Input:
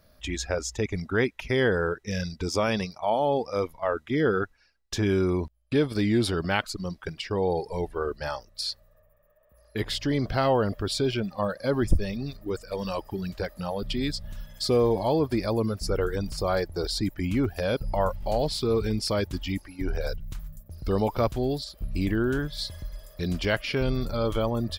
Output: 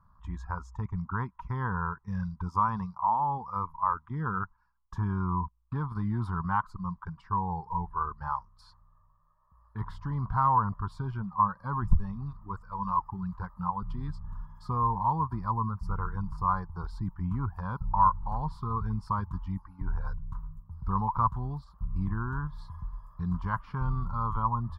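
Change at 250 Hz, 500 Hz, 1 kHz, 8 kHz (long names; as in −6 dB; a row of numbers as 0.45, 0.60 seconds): −8.0 dB, −21.5 dB, +5.0 dB, below −25 dB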